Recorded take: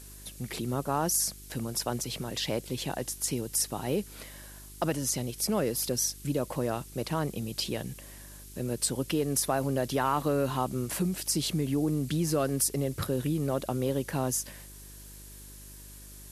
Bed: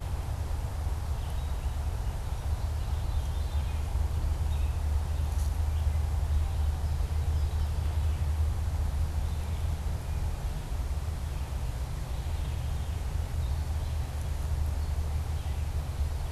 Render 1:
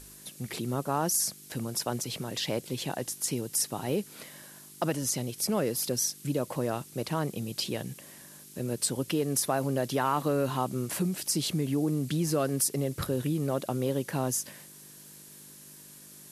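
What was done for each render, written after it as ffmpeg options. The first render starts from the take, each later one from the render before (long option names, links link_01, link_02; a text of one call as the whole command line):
ffmpeg -i in.wav -af "bandreject=frequency=50:width_type=h:width=4,bandreject=frequency=100:width_type=h:width=4" out.wav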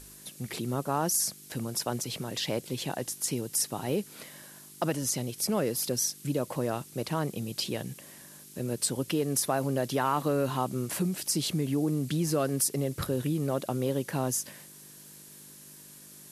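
ffmpeg -i in.wav -af anull out.wav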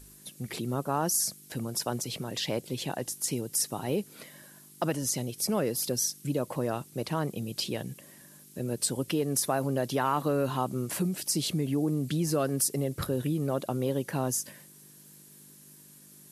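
ffmpeg -i in.wav -af "afftdn=noise_reduction=6:noise_floor=-51" out.wav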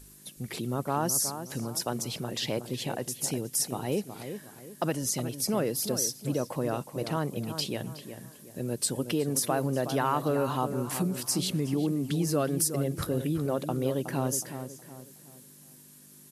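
ffmpeg -i in.wav -filter_complex "[0:a]asplit=2[link_01][link_02];[link_02]adelay=368,lowpass=frequency=2000:poles=1,volume=-9dB,asplit=2[link_03][link_04];[link_04]adelay=368,lowpass=frequency=2000:poles=1,volume=0.38,asplit=2[link_05][link_06];[link_06]adelay=368,lowpass=frequency=2000:poles=1,volume=0.38,asplit=2[link_07][link_08];[link_08]adelay=368,lowpass=frequency=2000:poles=1,volume=0.38[link_09];[link_01][link_03][link_05][link_07][link_09]amix=inputs=5:normalize=0" out.wav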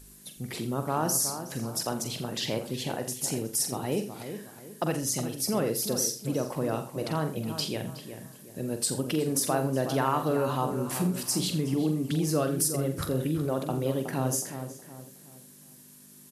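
ffmpeg -i in.wav -filter_complex "[0:a]asplit=2[link_01][link_02];[link_02]adelay=45,volume=-8.5dB[link_03];[link_01][link_03]amix=inputs=2:normalize=0,aecho=1:1:84:0.211" out.wav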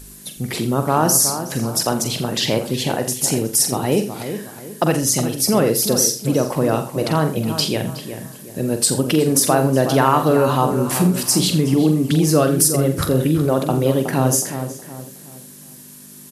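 ffmpeg -i in.wav -af "volume=11.5dB,alimiter=limit=-1dB:level=0:latency=1" out.wav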